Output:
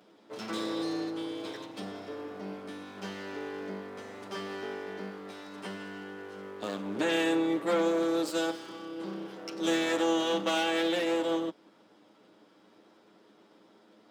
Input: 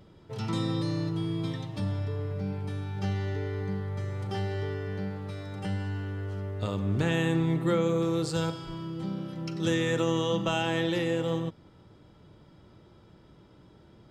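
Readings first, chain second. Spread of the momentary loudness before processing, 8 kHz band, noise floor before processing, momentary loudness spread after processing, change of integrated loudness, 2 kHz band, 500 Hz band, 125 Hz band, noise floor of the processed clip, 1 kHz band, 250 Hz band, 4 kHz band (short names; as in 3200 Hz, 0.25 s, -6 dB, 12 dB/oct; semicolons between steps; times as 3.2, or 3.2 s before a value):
9 LU, +1.5 dB, -56 dBFS, 15 LU, -2.0 dB, +1.0 dB, 0.0 dB, -20.5 dB, -61 dBFS, +1.0 dB, -1.5 dB, +1.5 dB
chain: minimum comb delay 9.6 ms; HPF 230 Hz 24 dB/oct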